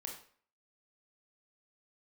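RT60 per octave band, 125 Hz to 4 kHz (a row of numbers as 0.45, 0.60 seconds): 0.40, 0.50, 0.50, 0.50, 0.45, 0.40 seconds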